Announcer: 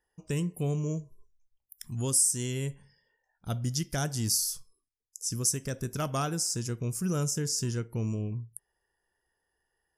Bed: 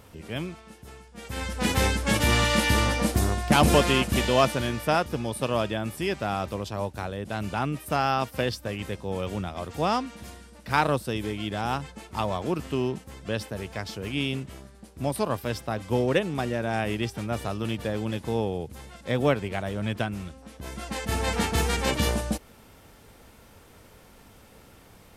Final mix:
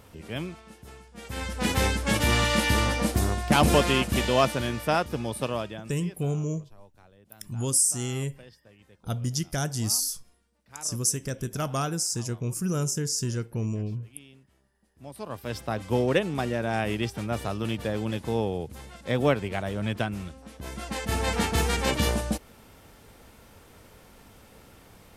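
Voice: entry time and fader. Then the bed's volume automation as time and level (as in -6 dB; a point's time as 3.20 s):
5.60 s, +2.0 dB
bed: 5.42 s -1 dB
6.32 s -23.5 dB
14.77 s -23.5 dB
15.63 s 0 dB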